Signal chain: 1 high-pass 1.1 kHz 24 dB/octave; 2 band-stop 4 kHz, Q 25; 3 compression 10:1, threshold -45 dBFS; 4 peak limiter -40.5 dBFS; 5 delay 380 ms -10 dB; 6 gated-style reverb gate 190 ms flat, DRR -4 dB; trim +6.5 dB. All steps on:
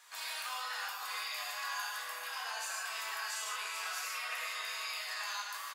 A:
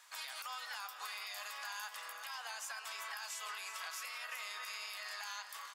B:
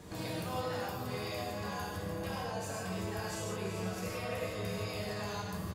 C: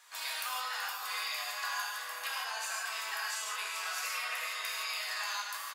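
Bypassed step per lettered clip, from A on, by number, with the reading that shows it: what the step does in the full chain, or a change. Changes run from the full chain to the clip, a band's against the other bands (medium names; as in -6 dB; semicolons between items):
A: 6, loudness change -5.5 LU; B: 1, 500 Hz band +22.0 dB; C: 4, mean gain reduction 2.0 dB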